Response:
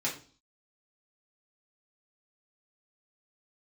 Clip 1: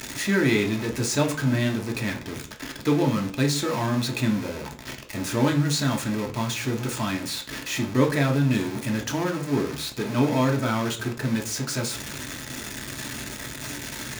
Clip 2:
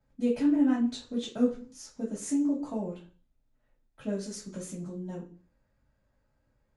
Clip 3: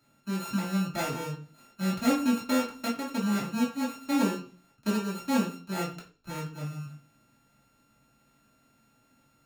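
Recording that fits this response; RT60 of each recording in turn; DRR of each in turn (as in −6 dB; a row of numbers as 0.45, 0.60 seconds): 3; 0.40, 0.40, 0.40 seconds; 2.0, −16.0, −6.5 decibels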